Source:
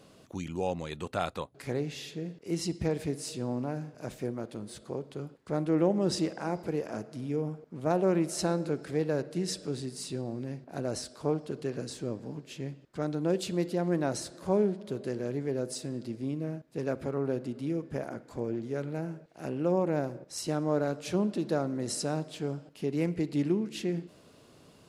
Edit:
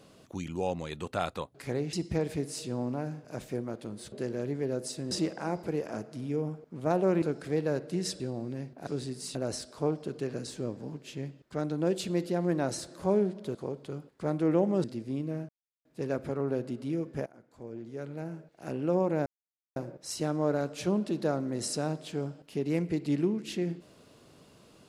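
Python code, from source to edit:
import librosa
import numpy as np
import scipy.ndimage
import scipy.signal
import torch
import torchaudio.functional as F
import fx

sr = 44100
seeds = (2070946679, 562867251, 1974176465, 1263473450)

y = fx.edit(x, sr, fx.cut(start_s=1.93, length_s=0.7),
    fx.swap(start_s=4.82, length_s=1.29, other_s=14.98, other_length_s=0.99),
    fx.cut(start_s=8.22, length_s=0.43),
    fx.move(start_s=9.63, length_s=0.48, to_s=10.78),
    fx.insert_silence(at_s=16.62, length_s=0.36),
    fx.fade_in_from(start_s=18.03, length_s=1.5, floor_db=-20.5),
    fx.insert_silence(at_s=20.03, length_s=0.5), tone=tone)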